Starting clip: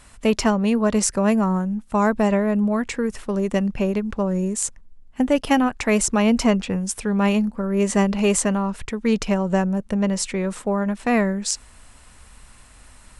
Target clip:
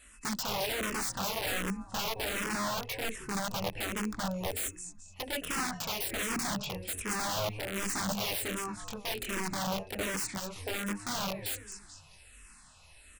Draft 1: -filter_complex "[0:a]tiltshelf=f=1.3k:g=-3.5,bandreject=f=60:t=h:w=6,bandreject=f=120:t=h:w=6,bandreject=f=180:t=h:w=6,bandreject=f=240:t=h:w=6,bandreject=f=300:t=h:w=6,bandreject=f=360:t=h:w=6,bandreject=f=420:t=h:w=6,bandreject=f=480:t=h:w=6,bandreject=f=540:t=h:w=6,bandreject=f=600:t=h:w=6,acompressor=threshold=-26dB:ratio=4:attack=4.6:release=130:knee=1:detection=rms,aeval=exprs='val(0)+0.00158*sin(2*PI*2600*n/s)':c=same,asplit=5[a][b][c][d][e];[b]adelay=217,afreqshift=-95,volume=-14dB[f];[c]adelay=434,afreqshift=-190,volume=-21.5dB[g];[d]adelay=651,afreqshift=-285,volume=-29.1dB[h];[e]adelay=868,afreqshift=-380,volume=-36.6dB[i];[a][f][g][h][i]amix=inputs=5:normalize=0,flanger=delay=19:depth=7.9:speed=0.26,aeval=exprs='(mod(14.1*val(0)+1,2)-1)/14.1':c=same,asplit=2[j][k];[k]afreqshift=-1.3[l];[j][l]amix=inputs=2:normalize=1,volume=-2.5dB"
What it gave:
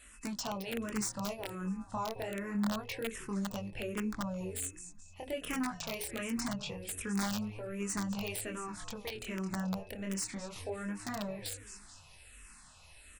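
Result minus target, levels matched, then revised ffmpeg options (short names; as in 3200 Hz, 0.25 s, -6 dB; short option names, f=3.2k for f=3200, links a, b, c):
compressor: peak gain reduction +5.5 dB
-filter_complex "[0:a]tiltshelf=f=1.3k:g=-3.5,bandreject=f=60:t=h:w=6,bandreject=f=120:t=h:w=6,bandreject=f=180:t=h:w=6,bandreject=f=240:t=h:w=6,bandreject=f=300:t=h:w=6,bandreject=f=360:t=h:w=6,bandreject=f=420:t=h:w=6,bandreject=f=480:t=h:w=6,bandreject=f=540:t=h:w=6,bandreject=f=600:t=h:w=6,acompressor=threshold=-18.5dB:ratio=4:attack=4.6:release=130:knee=1:detection=rms,aeval=exprs='val(0)+0.00158*sin(2*PI*2600*n/s)':c=same,asplit=5[a][b][c][d][e];[b]adelay=217,afreqshift=-95,volume=-14dB[f];[c]adelay=434,afreqshift=-190,volume=-21.5dB[g];[d]adelay=651,afreqshift=-285,volume=-29.1dB[h];[e]adelay=868,afreqshift=-380,volume=-36.6dB[i];[a][f][g][h][i]amix=inputs=5:normalize=0,flanger=delay=19:depth=7.9:speed=0.26,aeval=exprs='(mod(14.1*val(0)+1,2)-1)/14.1':c=same,asplit=2[j][k];[k]afreqshift=-1.3[l];[j][l]amix=inputs=2:normalize=1,volume=-2.5dB"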